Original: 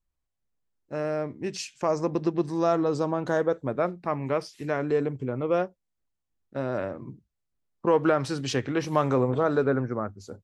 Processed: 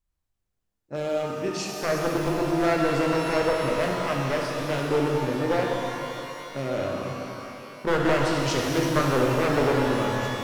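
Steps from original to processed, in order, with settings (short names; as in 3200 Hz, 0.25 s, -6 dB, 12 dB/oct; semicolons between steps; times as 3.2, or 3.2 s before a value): one-sided fold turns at -21 dBFS; shimmer reverb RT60 2.9 s, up +12 st, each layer -8 dB, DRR -1 dB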